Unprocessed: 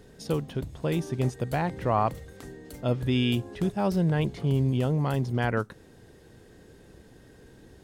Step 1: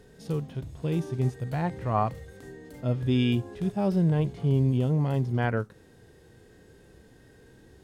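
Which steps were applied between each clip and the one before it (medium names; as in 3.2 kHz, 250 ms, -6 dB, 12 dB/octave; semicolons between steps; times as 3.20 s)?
harmonic-percussive split percussive -13 dB; trim +1.5 dB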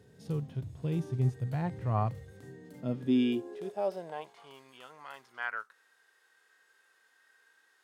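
high-pass sweep 100 Hz -> 1.3 kHz, 2.32–4.63 s; trim -7 dB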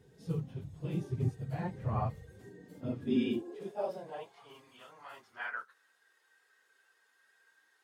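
phase randomisation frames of 50 ms; trim -3 dB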